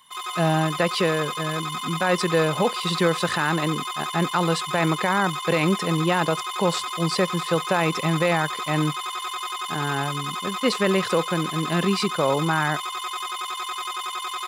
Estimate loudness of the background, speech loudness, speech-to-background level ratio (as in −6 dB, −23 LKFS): −29.0 LKFS, −24.5 LKFS, 4.5 dB